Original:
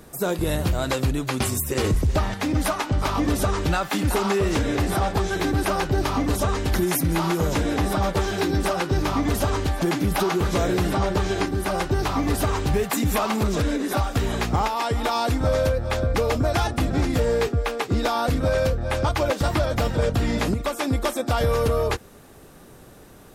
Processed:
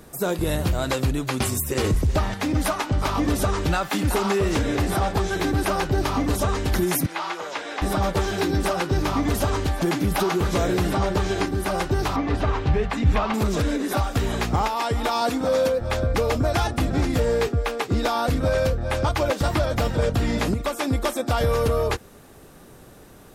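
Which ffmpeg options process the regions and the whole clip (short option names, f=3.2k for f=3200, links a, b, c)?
-filter_complex "[0:a]asettb=1/sr,asplit=3[a][b][c];[a]atrim=end=7.064[d];[b]atrim=start=7.06:end=7.82,asetpts=PTS-STARTPTS,afade=t=in:d=0.004:c=qsin,afade=t=out:st=0.756:d=0.004:c=qsin,acrossover=split=4700[e][f];[f]acompressor=threshold=-44dB:ratio=4:attack=1:release=60[g];[e][g]amix=inputs=2:normalize=0,highpass=740,lowpass=7.3k[h];[c]atrim=start=7.816[i];[d][h]acrossfade=d=0.004:c1=hsin:c2=qsin[j];[j][i]acrossfade=d=0.004:c1=qsin:c2=hsin,asettb=1/sr,asplit=3[k][l][m];[k]atrim=end=12.164[n];[l]atrim=start=12.16:end=13.34,asetpts=PTS-STARTPTS,afade=t=in:d=0.004:c=qsin,afade=t=out:st=1.176:d=0.004:c=qsin,bandreject=f=50:t=h:w=6,bandreject=f=100:t=h:w=6,bandreject=f=150:t=h:w=6,bandreject=f=200:t=h:w=6,bandreject=f=250:t=h:w=6,bandreject=f=300:t=h:w=6,bandreject=f=350:t=h:w=6,asubboost=boost=7:cutoff=150,lowpass=3.3k[o];[m]atrim=start=13.336[p];[n][o]acrossfade=d=0.004:c1=hsin:c2=qsin[q];[q][p]acrossfade=d=0.004:c1=qsin:c2=hsin,asettb=1/sr,asplit=3[r][s][t];[r]atrim=end=15.214[u];[s]atrim=start=15.21:end=15.81,asetpts=PTS-STARTPTS,afade=t=in:d=0.004:c=qsin,afade=t=out:st=0.596:d=0.004:c=qsin,highpass=180,aecho=1:1:4.1:0.55,atrim=end_sample=26460,aeval=exprs='sgn(val(0))*max(abs(val(0))-0.00282,0)':c=same[v];[t]atrim=start=15.806[w];[u][v]acrossfade=d=0.004:c1=hsin:c2=qsin[x];[x][w]acrossfade=d=0.004:c1=qsin:c2=hsin"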